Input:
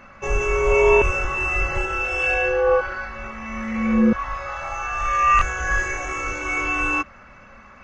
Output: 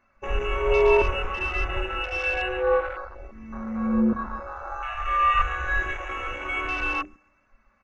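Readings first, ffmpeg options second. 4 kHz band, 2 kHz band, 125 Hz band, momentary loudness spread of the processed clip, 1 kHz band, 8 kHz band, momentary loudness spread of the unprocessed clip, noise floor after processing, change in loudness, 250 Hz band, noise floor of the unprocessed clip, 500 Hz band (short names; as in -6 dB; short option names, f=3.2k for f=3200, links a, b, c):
+3.0 dB, -5.5 dB, -4.5 dB, 15 LU, -3.5 dB, under -15 dB, 12 LU, -66 dBFS, -4.5 dB, -4.5 dB, -46 dBFS, -3.5 dB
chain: -filter_complex "[0:a]bandreject=f=50:t=h:w=6,bandreject=f=100:t=h:w=6,bandreject=f=150:t=h:w=6,bandreject=f=200:t=h:w=6,bandreject=f=250:t=h:w=6,bandreject=f=300:t=h:w=6,asplit=2[a][b];[b]aecho=0:1:137|274|411|548:0.178|0.0782|0.0344|0.0151[c];[a][c]amix=inputs=2:normalize=0,flanger=delay=2.8:depth=1.2:regen=-45:speed=1.2:shape=triangular,afwtdn=0.0282,bandreject=f=3.2k:w=7.9"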